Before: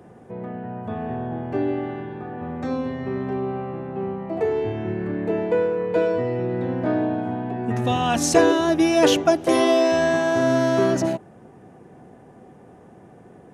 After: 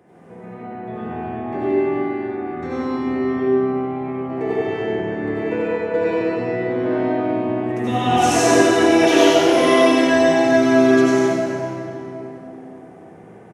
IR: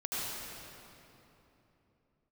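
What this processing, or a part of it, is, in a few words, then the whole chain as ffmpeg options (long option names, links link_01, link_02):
PA in a hall: -filter_complex "[0:a]highpass=frequency=150:poles=1,equalizer=frequency=2100:width_type=o:width=0.38:gain=7,aecho=1:1:95:0.631[link_01];[1:a]atrim=start_sample=2205[link_02];[link_01][link_02]afir=irnorm=-1:irlink=0,volume=-2.5dB"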